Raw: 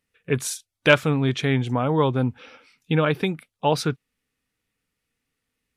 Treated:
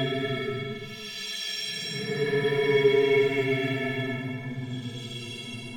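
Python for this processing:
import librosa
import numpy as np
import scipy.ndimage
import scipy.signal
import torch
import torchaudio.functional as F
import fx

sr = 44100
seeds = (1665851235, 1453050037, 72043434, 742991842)

y = fx.leveller(x, sr, passes=2)
y = fx.stiff_resonator(y, sr, f0_hz=200.0, decay_s=0.24, stiffness=0.03)
y = fx.paulstretch(y, sr, seeds[0], factor=14.0, window_s=0.1, from_s=1.28)
y = F.gain(torch.from_numpy(y), 2.5).numpy()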